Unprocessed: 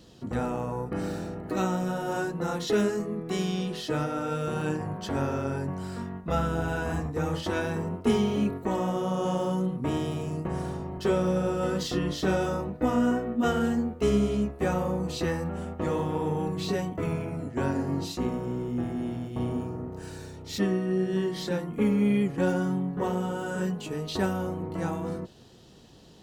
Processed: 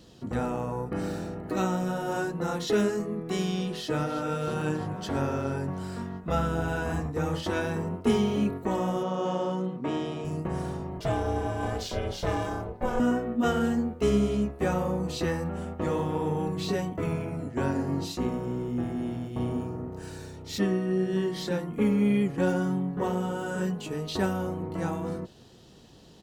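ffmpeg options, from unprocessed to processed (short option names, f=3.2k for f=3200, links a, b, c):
-filter_complex "[0:a]asplit=2[a][b];[b]afade=t=in:st=3.65:d=0.01,afade=t=out:st=4.19:d=0.01,aecho=0:1:330|660|990|1320|1650|1980|2310|2640|2970:0.237137|0.165996|0.116197|0.0813381|0.0569367|0.0398557|0.027899|0.0195293|0.0136705[c];[a][c]amix=inputs=2:normalize=0,asettb=1/sr,asplit=3[d][e][f];[d]atrim=end=9.034[g];[e]atrim=start=9.03:end=10.25,asetpts=PTS-STARTPTS,afade=t=in:d=0.004:c=qsin,afade=t=out:st=1.216:d=0.004:c=qsin,highpass=200,lowpass=5.3k[h];[f]atrim=start=10.246[i];[g][h]acrossfade=d=0.004:c1=hsin:c2=qsin[j];[j][i]acrossfade=d=0.004:c1=qsin:c2=hsin,asettb=1/sr,asplit=3[k][l][m];[k]atrim=end=11.004[n];[l]atrim=start=11:end=13,asetpts=PTS-STARTPTS,afade=t=in:d=0.004:c=qsin,afade=t=out:st=1.996:d=0.004:c=qsin,aeval=exprs='val(0)*sin(2*PI*260*n/s)':c=same[o];[m]atrim=start=12.996[p];[n][o]acrossfade=d=0.004:c1=hsin:c2=qsin[q];[q][p]acrossfade=d=0.004:c1=qsin:c2=hsin"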